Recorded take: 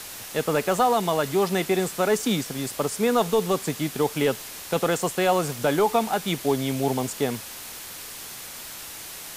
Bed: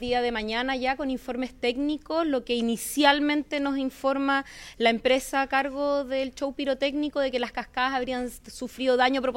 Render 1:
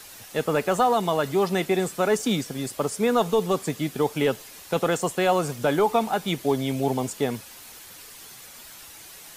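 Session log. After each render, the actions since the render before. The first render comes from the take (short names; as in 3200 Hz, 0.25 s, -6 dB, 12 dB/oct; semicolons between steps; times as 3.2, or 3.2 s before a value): denoiser 8 dB, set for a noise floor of -39 dBFS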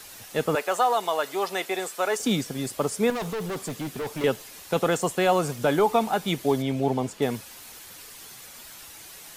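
0.55–2.2 HPF 540 Hz; 3.1–4.24 hard clip -28 dBFS; 6.62–7.22 LPF 3300 Hz 6 dB/oct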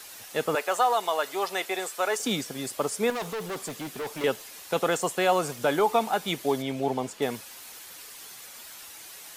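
low shelf 230 Hz -11 dB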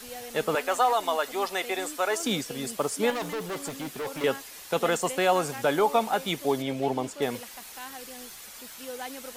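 add bed -16.5 dB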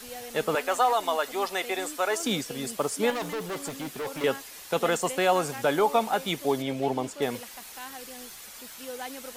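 nothing audible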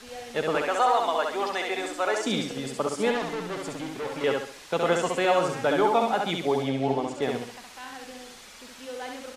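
air absorption 67 m; feedback echo 67 ms, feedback 37%, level -3.5 dB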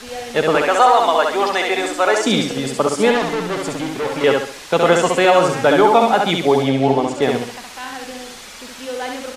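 gain +10.5 dB; limiter -2 dBFS, peak gain reduction 2.5 dB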